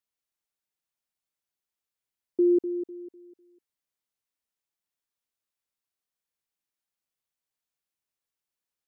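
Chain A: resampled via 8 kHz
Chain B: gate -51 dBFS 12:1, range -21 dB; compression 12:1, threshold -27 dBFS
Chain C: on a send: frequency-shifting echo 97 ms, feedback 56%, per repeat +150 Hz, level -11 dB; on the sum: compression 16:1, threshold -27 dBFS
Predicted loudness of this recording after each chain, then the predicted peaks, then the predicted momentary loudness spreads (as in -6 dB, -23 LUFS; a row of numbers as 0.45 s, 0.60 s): -26.5 LUFS, -34.0 LUFS, -34.5 LUFS; -17.0 dBFS, -18.5 dBFS, -19.0 dBFS; 16 LU, 12 LU, 17 LU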